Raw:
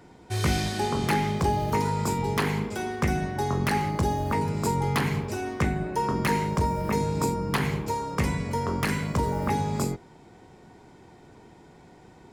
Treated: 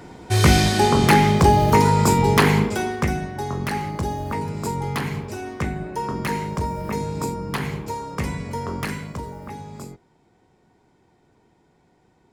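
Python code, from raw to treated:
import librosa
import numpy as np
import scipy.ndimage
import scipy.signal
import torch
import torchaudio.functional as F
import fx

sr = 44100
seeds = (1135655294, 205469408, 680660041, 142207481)

y = fx.gain(x, sr, db=fx.line((2.61, 10.0), (3.28, -0.5), (8.82, -0.5), (9.41, -9.5)))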